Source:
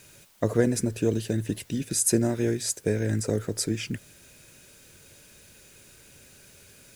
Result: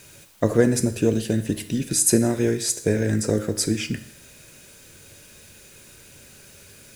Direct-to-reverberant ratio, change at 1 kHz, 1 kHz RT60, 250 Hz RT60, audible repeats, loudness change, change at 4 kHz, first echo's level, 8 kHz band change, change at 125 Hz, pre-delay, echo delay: 10.0 dB, +5.0 dB, 0.70 s, 0.65 s, none, +4.5 dB, +5.0 dB, none, +5.0 dB, +3.5 dB, 9 ms, none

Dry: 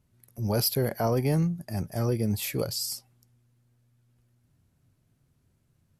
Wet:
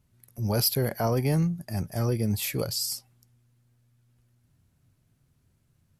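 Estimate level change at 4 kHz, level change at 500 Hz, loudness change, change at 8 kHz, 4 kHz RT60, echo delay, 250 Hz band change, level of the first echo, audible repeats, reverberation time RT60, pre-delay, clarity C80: +2.0 dB, -1.0 dB, +1.0 dB, +2.0 dB, none, none, 0.0 dB, none, none, none, none, none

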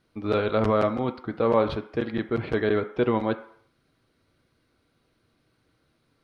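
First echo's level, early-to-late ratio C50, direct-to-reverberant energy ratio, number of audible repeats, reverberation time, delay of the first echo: none, 13.5 dB, 7.0 dB, none, 0.60 s, none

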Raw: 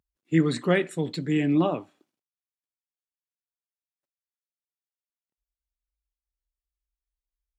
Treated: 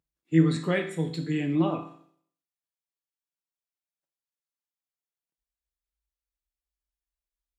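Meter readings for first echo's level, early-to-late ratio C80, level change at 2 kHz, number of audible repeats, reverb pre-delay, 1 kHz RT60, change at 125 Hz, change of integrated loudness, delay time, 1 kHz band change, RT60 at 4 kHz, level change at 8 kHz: none, 13.0 dB, -3.0 dB, none, 6 ms, 0.55 s, +1.0 dB, -1.5 dB, none, -3.0 dB, 0.55 s, n/a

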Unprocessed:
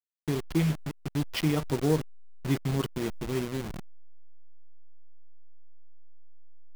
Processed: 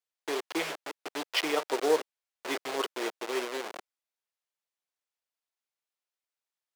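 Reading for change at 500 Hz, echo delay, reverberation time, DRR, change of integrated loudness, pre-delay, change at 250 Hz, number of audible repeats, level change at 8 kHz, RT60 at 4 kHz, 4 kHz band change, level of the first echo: +2.0 dB, none, none, none, -2.0 dB, none, -9.0 dB, none, +2.0 dB, none, +4.5 dB, none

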